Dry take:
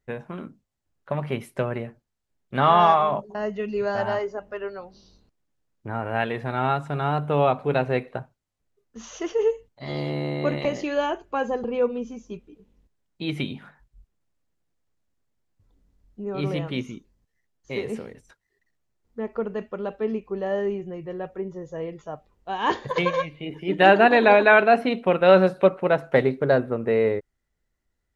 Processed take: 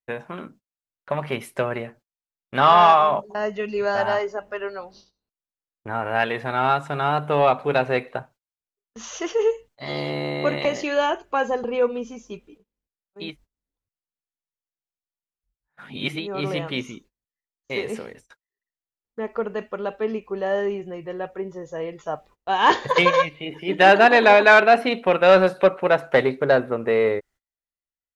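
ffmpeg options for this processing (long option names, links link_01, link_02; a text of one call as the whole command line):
ffmpeg -i in.wav -filter_complex "[0:a]asplit=5[link_01][link_02][link_03][link_04][link_05];[link_01]atrim=end=13.37[link_06];[link_02]atrim=start=13.13:end=16.35,asetpts=PTS-STARTPTS,areverse[link_07];[link_03]atrim=start=16.11:end=22.062[link_08];[link_04]atrim=start=22.058:end=23.292,asetpts=PTS-STARTPTS,volume=3.5dB[link_09];[link_05]atrim=start=23.288[link_10];[link_06][link_07]acrossfade=duration=0.24:curve1=tri:curve2=tri[link_11];[link_11][link_08]acrossfade=duration=0.24:curve1=tri:curve2=tri[link_12];[link_12][link_09]acrossfade=duration=0.004:curve1=hsin:curve2=hsin[link_13];[link_13][link_10]acrossfade=duration=0.004:curve1=hsin:curve2=hsin,acontrast=58,lowshelf=frequency=370:gain=-10.5,agate=range=-24dB:threshold=-49dB:ratio=16:detection=peak" out.wav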